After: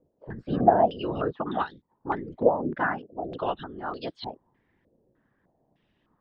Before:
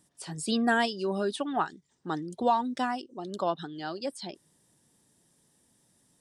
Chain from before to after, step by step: whisperiser; air absorption 210 m; stepped low-pass 3.3 Hz 530–3700 Hz

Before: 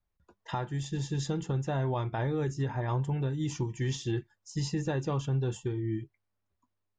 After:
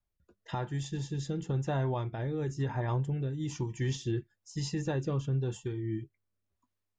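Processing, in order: rotary speaker horn 1 Hz

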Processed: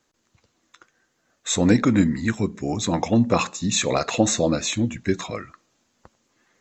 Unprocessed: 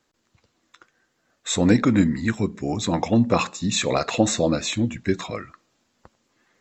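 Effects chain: bell 6400 Hz +5.5 dB 0.23 oct

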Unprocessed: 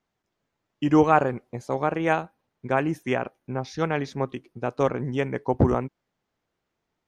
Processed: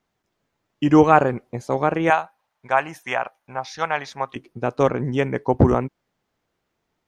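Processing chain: 2.1–4.36 resonant low shelf 520 Hz -13.5 dB, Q 1.5; gain +4.5 dB

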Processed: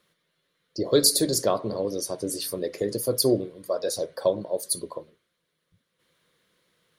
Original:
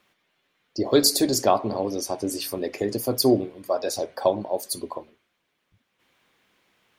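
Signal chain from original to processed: thirty-one-band EQ 160 Hz +10 dB, 250 Hz -5 dB, 500 Hz +7 dB, 800 Hz -12 dB, 2500 Hz -7 dB, 4000 Hz +5 dB, 10000 Hz +9 dB; gain -3 dB

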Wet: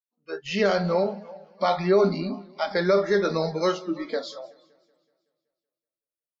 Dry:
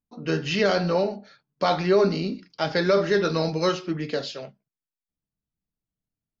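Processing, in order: opening faded in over 0.56 s; feedback echo 0.331 s, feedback 52%, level -19 dB; spectral noise reduction 29 dB; dynamic EQ 3900 Hz, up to -4 dB, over -44 dBFS, Q 0.81; warbling echo 0.188 s, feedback 52%, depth 117 cents, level -23.5 dB

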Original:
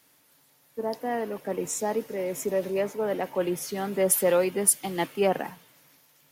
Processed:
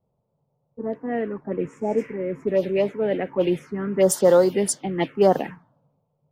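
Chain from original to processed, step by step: envelope phaser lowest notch 290 Hz, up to 2500 Hz, full sweep at -19.5 dBFS; spectral repair 1.84–2.14, 990–8900 Hz both; low-pass opened by the level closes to 330 Hz, open at -21.5 dBFS; gain +7.5 dB

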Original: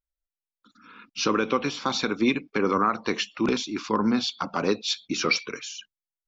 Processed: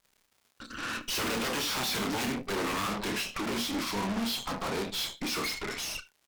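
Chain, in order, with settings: Doppler pass-by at 1.63, 25 m/s, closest 14 m; bell 65 Hz -6 dB 1.6 oct; notches 60/120/180/240 Hz; in parallel at -1 dB: compressor, threshold -41 dBFS, peak gain reduction 20.5 dB; on the sum: sine folder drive 16 dB, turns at -9.5 dBFS; crackle 280/s -46 dBFS; soft clip -25 dBFS, distortion -6 dB; doubler 30 ms -7 dB; on a send: echo 73 ms -16.5 dB; on the sum: added harmonics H 6 -10 dB, 8 -25 dB, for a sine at -20.5 dBFS; gain -6.5 dB

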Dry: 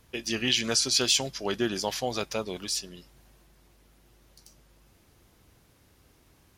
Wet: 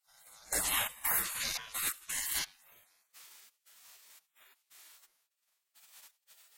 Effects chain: spectral dilation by 0.12 s; low shelf 490 Hz +3.5 dB; reverse echo 33 ms -11.5 dB; step gate "...xx.xxx.x.xx." 86 bpm -24 dB; bell 12000 Hz +8 dB 2.3 oct; de-hum 99.79 Hz, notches 22; spectral gate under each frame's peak -25 dB weak; gain +5.5 dB

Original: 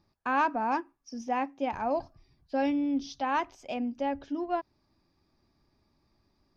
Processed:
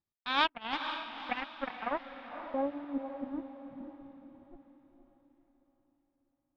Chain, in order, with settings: added harmonics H 3 -12 dB, 7 -27 dB, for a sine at -15.5 dBFS; transient shaper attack +1 dB, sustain -11 dB; low-pass sweep 3500 Hz -> 140 Hz, 1.07–3.99; on a send: diffused feedback echo 0.502 s, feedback 42%, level -8 dB

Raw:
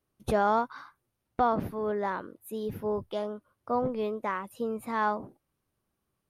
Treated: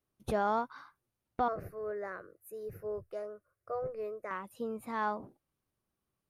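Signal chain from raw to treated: 1.48–4.31 fixed phaser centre 910 Hz, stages 6; gain -5.5 dB

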